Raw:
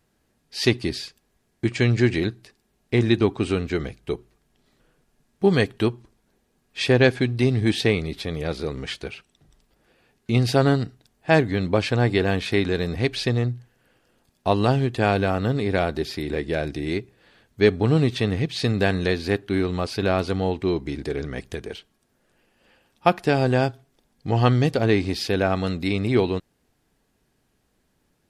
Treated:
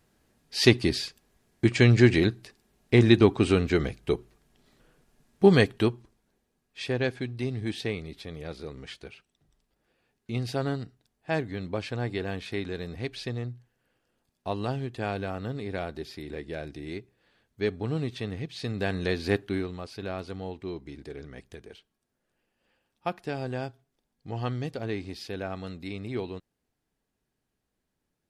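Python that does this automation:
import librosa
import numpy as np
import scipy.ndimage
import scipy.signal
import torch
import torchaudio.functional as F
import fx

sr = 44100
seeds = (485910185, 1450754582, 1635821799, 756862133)

y = fx.gain(x, sr, db=fx.line((5.44, 1.0), (6.83, -11.0), (18.62, -11.0), (19.39, -2.0), (19.77, -13.0)))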